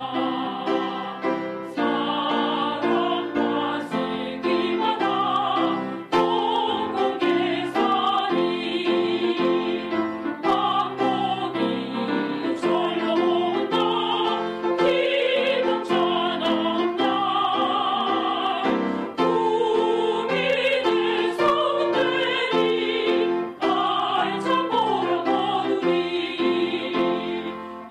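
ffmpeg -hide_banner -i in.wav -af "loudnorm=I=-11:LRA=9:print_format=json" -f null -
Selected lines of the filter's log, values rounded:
"input_i" : "-23.0",
"input_tp" : "-11.8",
"input_lra" : "2.6",
"input_thresh" : "-33.0",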